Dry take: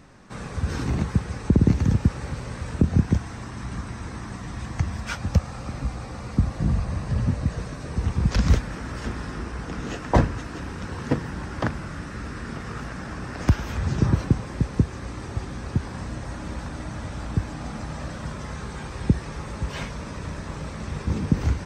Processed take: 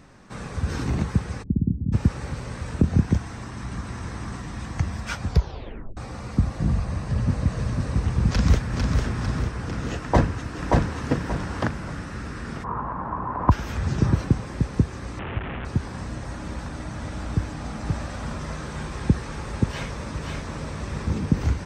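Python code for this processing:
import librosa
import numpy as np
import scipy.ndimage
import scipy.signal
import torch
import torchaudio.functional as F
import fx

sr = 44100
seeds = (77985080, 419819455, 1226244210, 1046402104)

y = fx.ladder_lowpass(x, sr, hz=300.0, resonance_pct=30, at=(1.42, 1.92), fade=0.02)
y = fx.echo_throw(y, sr, start_s=3.35, length_s=0.57, ms=490, feedback_pct=50, wet_db=-5.0)
y = fx.echo_throw(y, sr, start_s=6.79, length_s=0.7, ms=500, feedback_pct=75, wet_db=-3.5)
y = fx.echo_throw(y, sr, start_s=8.28, length_s=0.69, ms=450, feedback_pct=50, wet_db=-4.5)
y = fx.echo_throw(y, sr, start_s=10.0, length_s=1.07, ms=580, feedback_pct=30, wet_db=-1.5)
y = fx.lowpass_res(y, sr, hz=1000.0, q=8.5, at=(12.63, 13.5), fade=0.02)
y = fx.delta_mod(y, sr, bps=16000, step_db=-26.0, at=(15.19, 15.65))
y = fx.echo_throw(y, sr, start_s=16.71, length_s=0.48, ms=280, feedback_pct=65, wet_db=-7.5)
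y = fx.echo_single(y, sr, ms=529, db=-3.5, at=(17.84, 21.09), fade=0.02)
y = fx.edit(y, sr, fx.tape_stop(start_s=5.25, length_s=0.72), tone=tone)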